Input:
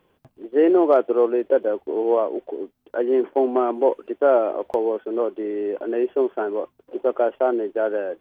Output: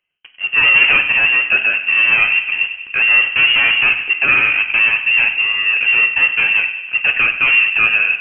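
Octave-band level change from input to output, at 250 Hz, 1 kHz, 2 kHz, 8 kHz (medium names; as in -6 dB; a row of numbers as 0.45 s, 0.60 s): -15.0 dB, 0.0 dB, +30.5 dB, no reading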